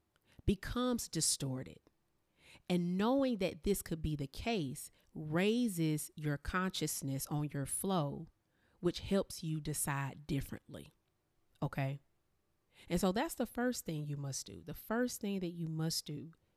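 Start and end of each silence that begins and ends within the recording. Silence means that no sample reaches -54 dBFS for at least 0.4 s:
1.87–2.46 s
8.27–8.82 s
10.91–11.56 s
11.97–12.78 s

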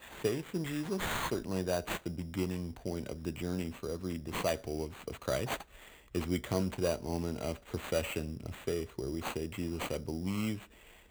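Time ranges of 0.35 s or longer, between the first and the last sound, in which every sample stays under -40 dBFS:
5.62–6.15 s

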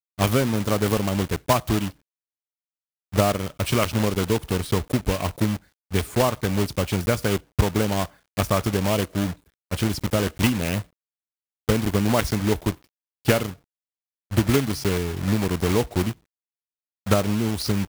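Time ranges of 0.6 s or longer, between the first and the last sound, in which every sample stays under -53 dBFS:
1.96–3.12 s
10.88–11.68 s
13.59–14.31 s
16.18–17.06 s

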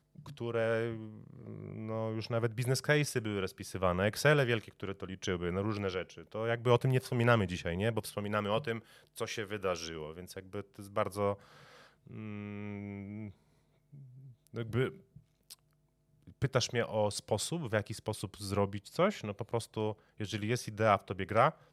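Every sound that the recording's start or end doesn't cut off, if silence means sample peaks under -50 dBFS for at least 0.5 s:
13.93–15.54 s

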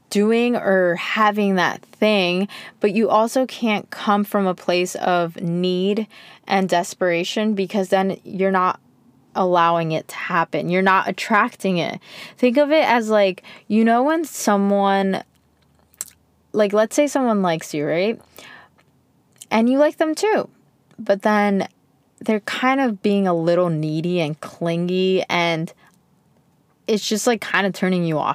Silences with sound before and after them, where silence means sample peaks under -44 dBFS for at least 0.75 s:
25.94–26.87 s

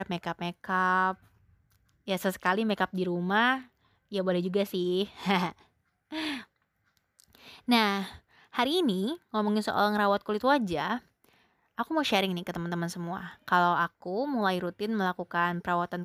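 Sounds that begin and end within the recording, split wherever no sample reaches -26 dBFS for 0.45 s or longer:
2.09–3.56 s
4.15–5.49 s
6.17–6.34 s
7.69–8.02 s
8.59–10.96 s

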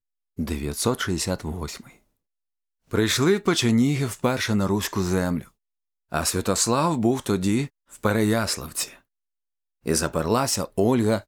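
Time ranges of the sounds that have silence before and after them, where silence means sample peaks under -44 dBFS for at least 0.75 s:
2.91–8.97 s

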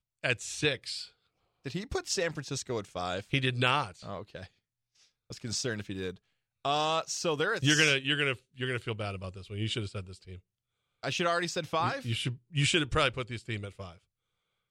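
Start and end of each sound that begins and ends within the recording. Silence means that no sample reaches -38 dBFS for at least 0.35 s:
1.66–4.44 s
5.30–6.11 s
6.65–10.35 s
11.03–13.89 s

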